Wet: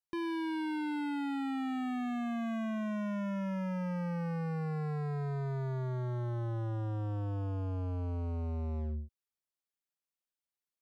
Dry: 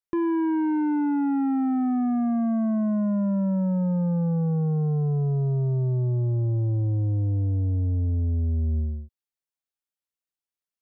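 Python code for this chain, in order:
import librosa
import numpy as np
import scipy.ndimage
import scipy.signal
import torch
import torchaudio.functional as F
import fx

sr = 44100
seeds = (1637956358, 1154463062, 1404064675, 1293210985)

y = np.clip(10.0 ** (30.5 / 20.0) * x, -1.0, 1.0) / 10.0 ** (30.5 / 20.0)
y = y * 10.0 ** (-4.0 / 20.0)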